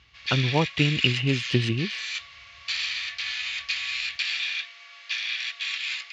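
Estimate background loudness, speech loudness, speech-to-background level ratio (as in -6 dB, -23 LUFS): -29.0 LUFS, -25.0 LUFS, 4.0 dB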